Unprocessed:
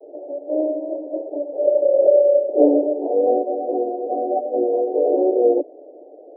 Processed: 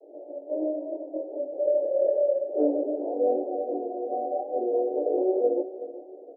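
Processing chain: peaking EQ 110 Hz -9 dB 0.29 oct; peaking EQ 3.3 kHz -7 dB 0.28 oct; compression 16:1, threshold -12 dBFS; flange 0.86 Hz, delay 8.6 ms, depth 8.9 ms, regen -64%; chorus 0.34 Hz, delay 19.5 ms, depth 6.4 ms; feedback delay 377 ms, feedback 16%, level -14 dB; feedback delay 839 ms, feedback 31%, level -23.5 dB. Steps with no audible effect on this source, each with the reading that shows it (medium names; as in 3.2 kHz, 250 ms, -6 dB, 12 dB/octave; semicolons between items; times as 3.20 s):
peaking EQ 110 Hz: input has nothing below 240 Hz; peaking EQ 3.3 kHz: input has nothing above 760 Hz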